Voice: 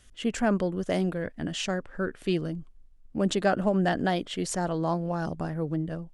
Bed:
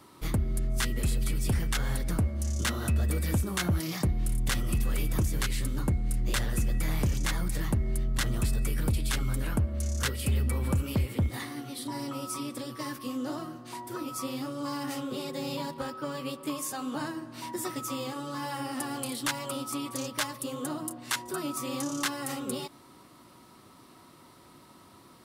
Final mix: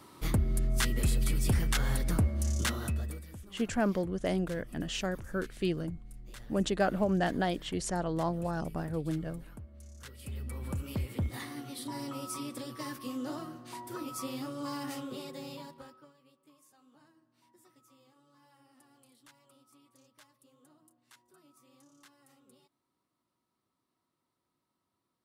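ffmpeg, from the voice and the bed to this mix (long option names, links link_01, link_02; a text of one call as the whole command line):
ffmpeg -i stem1.wav -i stem2.wav -filter_complex "[0:a]adelay=3350,volume=-4dB[link_01];[1:a]volume=16.5dB,afade=type=out:start_time=2.51:duration=0.75:silence=0.1,afade=type=in:start_time=10.04:duration=1.48:silence=0.149624,afade=type=out:start_time=14.78:duration=1.36:silence=0.0501187[link_02];[link_01][link_02]amix=inputs=2:normalize=0" out.wav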